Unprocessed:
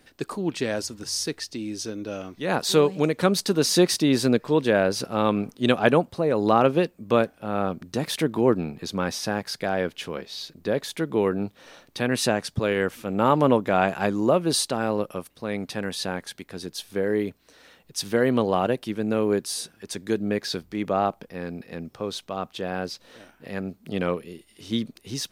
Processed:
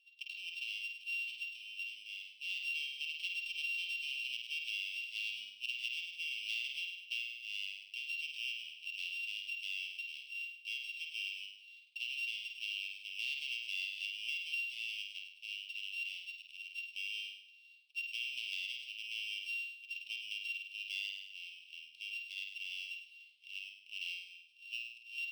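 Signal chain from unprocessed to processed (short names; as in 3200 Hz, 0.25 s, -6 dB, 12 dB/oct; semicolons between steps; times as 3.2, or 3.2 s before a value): sample sorter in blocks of 16 samples; steep high-pass 2700 Hz 72 dB/oct; air absorption 390 m; on a send: flutter echo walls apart 8.7 m, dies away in 0.67 s; on the sum: compressor 4:1, threshold -40 dBFS, peak gain reduction 9 dB; decimation joined by straight lines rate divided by 2×; gain +3.5 dB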